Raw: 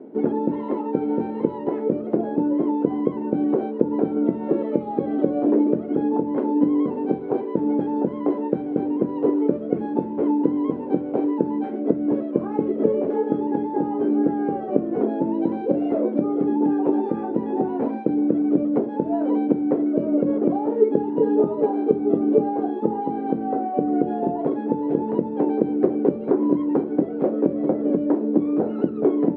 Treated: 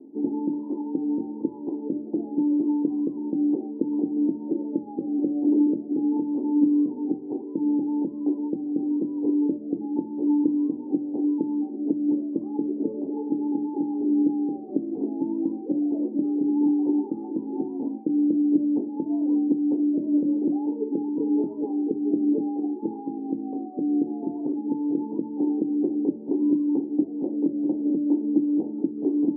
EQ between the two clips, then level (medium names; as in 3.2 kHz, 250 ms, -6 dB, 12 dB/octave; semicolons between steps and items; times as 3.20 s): cascade formant filter u; 0.0 dB